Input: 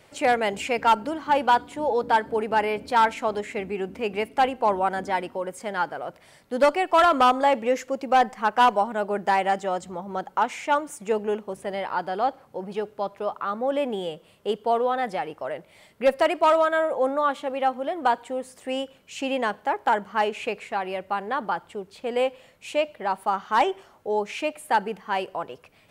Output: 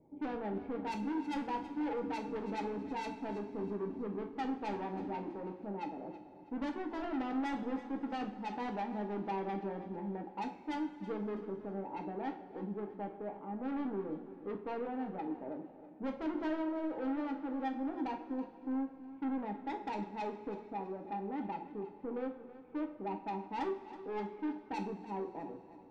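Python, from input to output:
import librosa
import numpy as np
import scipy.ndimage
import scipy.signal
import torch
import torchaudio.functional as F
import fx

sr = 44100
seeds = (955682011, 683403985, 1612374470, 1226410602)

p1 = fx.formant_cascade(x, sr, vowel='u')
p2 = fx.low_shelf(p1, sr, hz=370.0, db=3.5)
p3 = 10.0 ** (-37.5 / 20.0) * np.tanh(p2 / 10.0 ** (-37.5 / 20.0))
p4 = p3 + fx.echo_feedback(p3, sr, ms=325, feedback_pct=34, wet_db=-15, dry=0)
p5 = fx.rev_double_slope(p4, sr, seeds[0], early_s=0.37, late_s=3.3, knee_db=-18, drr_db=2.5)
y = p5 * librosa.db_to_amplitude(1.0)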